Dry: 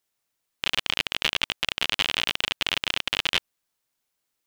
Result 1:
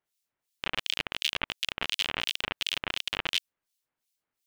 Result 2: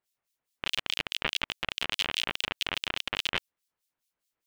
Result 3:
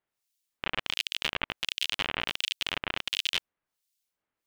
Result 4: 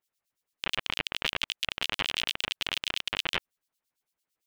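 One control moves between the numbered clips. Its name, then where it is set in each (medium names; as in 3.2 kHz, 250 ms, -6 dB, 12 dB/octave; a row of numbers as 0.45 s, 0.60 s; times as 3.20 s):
harmonic tremolo, rate: 2.8 Hz, 4.8 Hz, 1.4 Hz, 8.9 Hz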